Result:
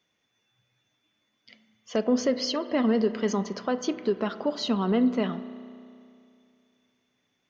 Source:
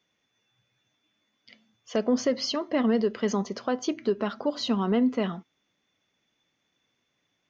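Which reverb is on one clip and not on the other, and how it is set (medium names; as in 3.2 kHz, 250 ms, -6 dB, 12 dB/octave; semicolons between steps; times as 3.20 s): spring tank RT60 2.5 s, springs 32 ms, chirp 35 ms, DRR 13 dB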